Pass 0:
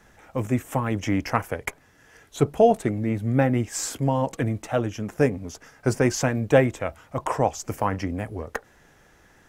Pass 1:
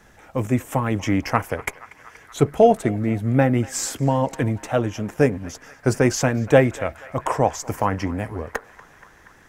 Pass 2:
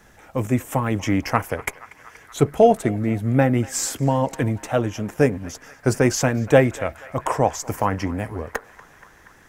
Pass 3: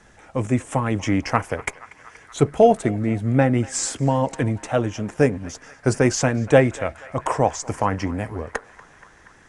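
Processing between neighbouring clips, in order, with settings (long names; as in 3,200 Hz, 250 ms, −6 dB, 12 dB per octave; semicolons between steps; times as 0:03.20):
feedback echo with a band-pass in the loop 238 ms, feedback 83%, band-pass 1,600 Hz, level −17.5 dB; level +3 dB
high-shelf EQ 9,100 Hz +4.5 dB
AAC 96 kbit/s 22,050 Hz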